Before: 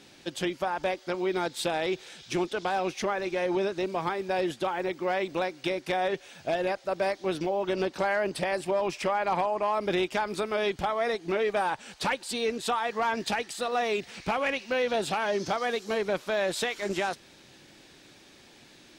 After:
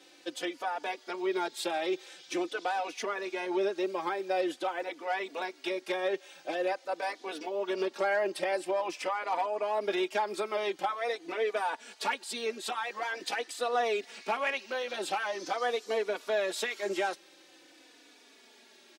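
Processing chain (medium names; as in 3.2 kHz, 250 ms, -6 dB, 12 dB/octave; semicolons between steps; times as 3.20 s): high-pass 280 Hz 24 dB/octave; endless flanger 3.4 ms -0.46 Hz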